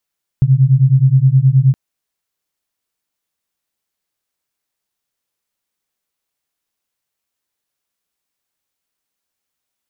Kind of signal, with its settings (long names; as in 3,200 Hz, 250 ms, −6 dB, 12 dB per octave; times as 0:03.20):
two tones that beat 128 Hz, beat 9.5 Hz, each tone −10.5 dBFS 1.32 s